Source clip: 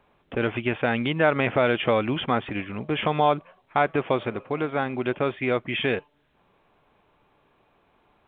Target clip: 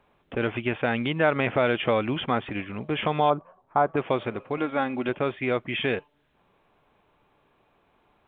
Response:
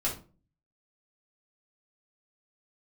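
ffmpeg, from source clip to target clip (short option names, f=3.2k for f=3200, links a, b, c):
-filter_complex "[0:a]asettb=1/sr,asplit=3[a][b][c];[a]atrim=end=3.304[d];[b]atrim=start=3.3:end=3.97,asetpts=PTS-STARTPTS,afade=t=in:d=0.004:c=qsin,afade=t=out:st=0.666:d=0.004:c=qsin,highshelf=f=1.6k:t=q:w=1.5:g=-12.5[e];[c]atrim=start=3.966[f];[d][e]acrossfade=d=0.004:c1=hsin:c2=qsin[g];[g][f]acrossfade=d=0.004:c1=qsin:c2=hsin,asettb=1/sr,asplit=3[h][i][j];[h]atrim=end=4.574[k];[i]atrim=start=4.57:end=5.09,asetpts=PTS-STARTPTS,afade=t=in:d=0.004:c=qsin,afade=t=out:st=0.516:d=0.004:c=qsin,aecho=1:1:3.6:0.5,atrim=end_sample=22932[l];[j]atrim=start=5.086[m];[k][l]acrossfade=d=0.004:c1=hsin:c2=qsin[n];[n][m]acrossfade=d=0.004:c1=qsin:c2=hsin,volume=-1.5dB"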